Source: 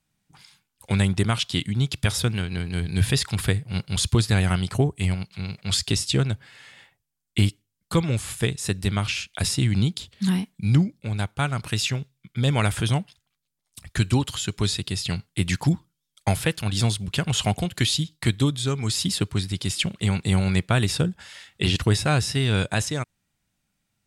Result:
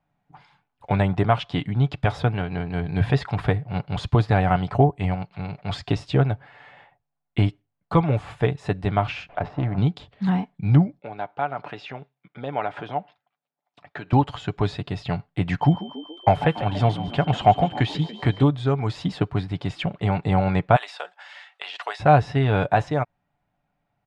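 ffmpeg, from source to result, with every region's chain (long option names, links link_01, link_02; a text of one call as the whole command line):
ffmpeg -i in.wav -filter_complex "[0:a]asettb=1/sr,asplit=3[link_01][link_02][link_03];[link_01]atrim=end=9.294[link_04];[link_02]atrim=start=9.29:end=9.78,asetpts=PTS-STARTPTS,afade=type=in:duration=0.004:curve=qsin,afade=type=out:start_time=0.486:duration=0.004:curve=qsin,aeval=exprs='val(0)+0.5*0.0282*sgn(val(0))':channel_layout=same,lowshelf=frequency=330:gain=-7,adynamicsmooth=sensitivity=1:basefreq=940[link_05];[link_03]atrim=start=9.776[link_06];[link_04][link_05]acrossfade=duration=0.004:curve1=hsin:curve2=qsin[link_07];[link_07][link_06]acrossfade=duration=0.004:curve1=qsin:curve2=hsin,asettb=1/sr,asplit=3[link_08][link_09][link_10];[link_08]atrim=end=10.994[link_11];[link_09]atrim=start=10.99:end=14.13,asetpts=PTS-STARTPTS,afade=type=in:duration=0.004:curve=qsin,afade=type=out:start_time=3.136:duration=0.004:curve=qsin,bandreject=frequency=1100:width=19,acompressor=threshold=-30dB:ratio=2:attack=3.2:release=140:knee=1:detection=peak,highpass=270,lowpass=5000[link_12];[link_10]atrim=start=14.126[link_13];[link_11][link_12]acrossfade=duration=0.004:curve1=hsin:curve2=qsin[link_14];[link_14][link_13]acrossfade=duration=0.004:curve1=qsin:curve2=hsin,asettb=1/sr,asplit=3[link_15][link_16][link_17];[link_15]atrim=end=15.614[link_18];[link_16]atrim=start=15.61:end=18.43,asetpts=PTS-STARTPTS,afade=type=in:duration=0.004:curve=qsin,afade=type=out:start_time=2.816:duration=0.004:curve=qsin,aeval=exprs='val(0)+0.02*sin(2*PI*3100*n/s)':channel_layout=same,asplit=6[link_19][link_20][link_21][link_22][link_23][link_24];[link_20]adelay=142,afreqshift=57,volume=-13.5dB[link_25];[link_21]adelay=284,afreqshift=114,volume=-19.2dB[link_26];[link_22]adelay=426,afreqshift=171,volume=-24.9dB[link_27];[link_23]adelay=568,afreqshift=228,volume=-30.5dB[link_28];[link_24]adelay=710,afreqshift=285,volume=-36.2dB[link_29];[link_19][link_25][link_26][link_27][link_28][link_29]amix=inputs=6:normalize=0,atrim=end_sample=124362[link_30];[link_17]atrim=start=18.426[link_31];[link_18][link_30]acrossfade=duration=0.004:curve1=hsin:curve2=qsin[link_32];[link_32][link_31]acrossfade=duration=0.004:curve1=qsin:curve2=hsin,asettb=1/sr,asplit=3[link_33][link_34][link_35];[link_33]atrim=end=20.764[link_36];[link_34]atrim=start=20.76:end=22,asetpts=PTS-STARTPTS,afade=type=in:duration=0.004:curve=qsin,afade=type=out:start_time=1.236:duration=0.004:curve=qsin,highpass=frequency=580:width=0.5412,highpass=frequency=580:width=1.3066,tiltshelf=frequency=1300:gain=-8,acompressor=threshold=-24dB:ratio=5:attack=3.2:release=140:knee=1:detection=peak[link_37];[link_35]atrim=start=21.996[link_38];[link_36][link_37]acrossfade=duration=0.004:curve1=hsin:curve2=qsin[link_39];[link_39][link_38]acrossfade=duration=0.004:curve1=qsin:curve2=hsin,lowpass=2000,equalizer=frequency=740:width_type=o:width=0.92:gain=13,aecho=1:1:6.9:0.37" out.wav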